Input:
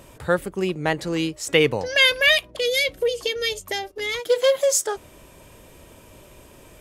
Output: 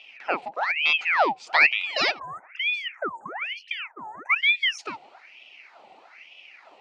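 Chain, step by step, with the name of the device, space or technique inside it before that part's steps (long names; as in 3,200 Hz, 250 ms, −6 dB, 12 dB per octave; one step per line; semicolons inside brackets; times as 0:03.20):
time-frequency box erased 0:02.19–0:04.79, 1,400–7,100 Hz
thirty-one-band graphic EQ 315 Hz +12 dB, 1,250 Hz −11 dB, 4,000 Hz +6 dB, 8,000 Hz +4 dB
voice changer toy (ring modulator whose carrier an LFO sweeps 1,700 Hz, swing 75%, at 1.1 Hz; loudspeaker in its box 470–4,100 Hz, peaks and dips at 470 Hz −5 dB, 750 Hz +4 dB, 1,100 Hz −7 dB, 1,600 Hz −8 dB, 2,500 Hz +5 dB, 3,500 Hz −6 dB)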